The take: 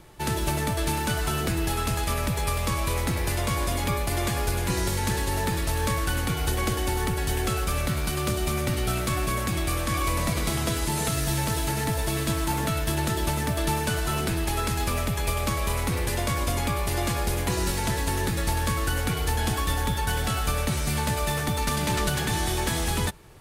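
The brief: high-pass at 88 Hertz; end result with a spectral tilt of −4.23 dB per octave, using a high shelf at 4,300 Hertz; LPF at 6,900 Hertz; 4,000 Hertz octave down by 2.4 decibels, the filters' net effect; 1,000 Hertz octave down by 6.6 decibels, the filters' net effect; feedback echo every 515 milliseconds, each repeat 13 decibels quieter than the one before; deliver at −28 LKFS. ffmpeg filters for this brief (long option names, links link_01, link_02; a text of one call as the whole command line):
ffmpeg -i in.wav -af "highpass=88,lowpass=6900,equalizer=frequency=1000:width_type=o:gain=-8.5,equalizer=frequency=4000:width_type=o:gain=-6,highshelf=frequency=4300:gain=7,aecho=1:1:515|1030|1545:0.224|0.0493|0.0108,volume=1dB" out.wav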